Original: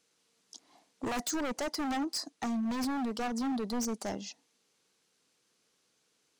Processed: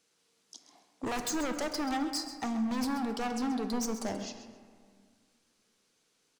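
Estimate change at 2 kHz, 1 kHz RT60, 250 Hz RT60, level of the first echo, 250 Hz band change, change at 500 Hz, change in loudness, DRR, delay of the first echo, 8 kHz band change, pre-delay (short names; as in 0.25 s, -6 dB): +1.0 dB, 1.8 s, 2.3 s, -12.0 dB, +0.5 dB, +1.0 dB, +0.5 dB, 6.5 dB, 0.132 s, +0.5 dB, 10 ms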